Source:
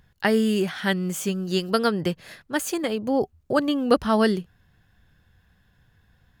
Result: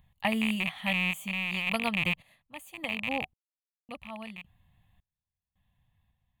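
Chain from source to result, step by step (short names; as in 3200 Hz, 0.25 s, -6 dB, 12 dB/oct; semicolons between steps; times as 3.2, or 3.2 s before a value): rattling part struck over -34 dBFS, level -11 dBFS; fixed phaser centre 1500 Hz, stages 6; random-step tremolo 1.8 Hz, depth 100%; gain -3.5 dB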